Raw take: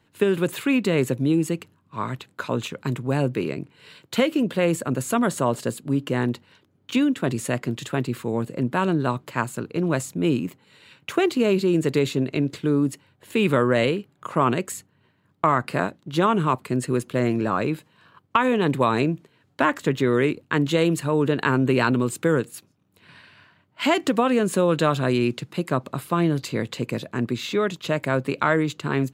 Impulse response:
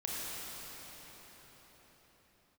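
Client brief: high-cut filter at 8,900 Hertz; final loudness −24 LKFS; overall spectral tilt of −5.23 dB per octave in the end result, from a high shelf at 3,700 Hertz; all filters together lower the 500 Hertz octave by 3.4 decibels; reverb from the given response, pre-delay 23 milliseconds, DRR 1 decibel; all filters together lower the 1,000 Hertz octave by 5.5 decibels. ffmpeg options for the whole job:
-filter_complex "[0:a]lowpass=8900,equalizer=frequency=500:width_type=o:gain=-3,equalizer=frequency=1000:width_type=o:gain=-7,highshelf=frequency=3700:gain=8.5,asplit=2[link_01][link_02];[1:a]atrim=start_sample=2205,adelay=23[link_03];[link_02][link_03]afir=irnorm=-1:irlink=0,volume=-5.5dB[link_04];[link_01][link_04]amix=inputs=2:normalize=0,volume=-1.5dB"

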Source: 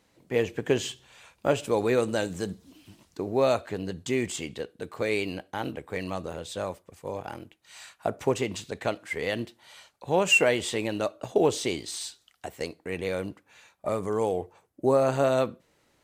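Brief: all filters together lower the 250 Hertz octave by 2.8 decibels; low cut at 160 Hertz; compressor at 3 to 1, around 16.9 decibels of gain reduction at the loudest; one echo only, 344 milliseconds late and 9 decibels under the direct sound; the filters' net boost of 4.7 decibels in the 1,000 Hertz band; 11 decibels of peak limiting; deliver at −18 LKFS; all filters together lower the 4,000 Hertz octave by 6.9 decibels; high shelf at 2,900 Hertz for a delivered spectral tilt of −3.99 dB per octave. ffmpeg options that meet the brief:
ffmpeg -i in.wav -af "highpass=160,equalizer=frequency=250:width_type=o:gain=-3.5,equalizer=frequency=1000:width_type=o:gain=7.5,highshelf=frequency=2900:gain=-5,equalizer=frequency=4000:width_type=o:gain=-7.5,acompressor=threshold=-41dB:ratio=3,alimiter=level_in=8.5dB:limit=-24dB:level=0:latency=1,volume=-8.5dB,aecho=1:1:344:0.355,volume=27dB" out.wav

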